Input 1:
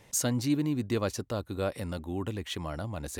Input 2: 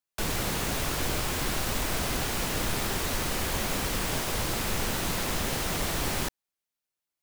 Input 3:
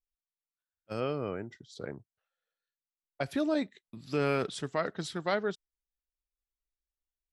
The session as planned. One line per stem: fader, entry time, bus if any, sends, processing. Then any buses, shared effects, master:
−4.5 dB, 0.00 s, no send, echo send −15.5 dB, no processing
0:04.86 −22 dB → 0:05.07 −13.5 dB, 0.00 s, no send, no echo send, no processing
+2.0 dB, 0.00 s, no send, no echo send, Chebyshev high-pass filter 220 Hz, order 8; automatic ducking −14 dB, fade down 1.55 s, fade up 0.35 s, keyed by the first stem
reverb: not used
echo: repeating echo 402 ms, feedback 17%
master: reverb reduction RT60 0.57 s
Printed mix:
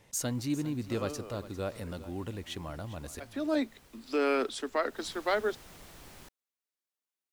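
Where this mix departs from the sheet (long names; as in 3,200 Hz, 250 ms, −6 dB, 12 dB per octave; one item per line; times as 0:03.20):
stem 2 −22.0 dB → −30.5 dB
master: missing reverb reduction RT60 0.57 s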